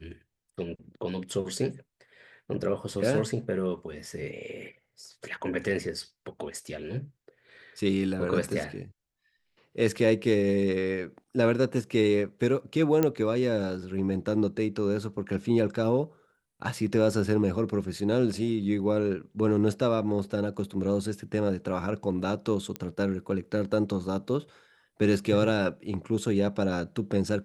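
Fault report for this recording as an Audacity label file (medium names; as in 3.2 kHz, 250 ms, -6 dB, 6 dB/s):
13.030000	13.030000	pop -11 dBFS
22.760000	22.760000	pop -17 dBFS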